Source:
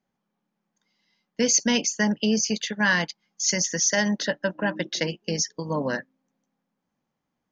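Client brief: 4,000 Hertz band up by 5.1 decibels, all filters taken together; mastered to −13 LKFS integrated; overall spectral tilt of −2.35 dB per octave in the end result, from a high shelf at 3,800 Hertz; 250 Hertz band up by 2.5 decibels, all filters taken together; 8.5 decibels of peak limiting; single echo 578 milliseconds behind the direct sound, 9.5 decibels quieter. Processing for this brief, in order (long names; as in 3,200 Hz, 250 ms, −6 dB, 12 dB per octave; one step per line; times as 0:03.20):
parametric band 250 Hz +3 dB
high-shelf EQ 3,800 Hz +5.5 dB
parametric band 4,000 Hz +3 dB
brickwall limiter −12.5 dBFS
single-tap delay 578 ms −9.5 dB
level +10 dB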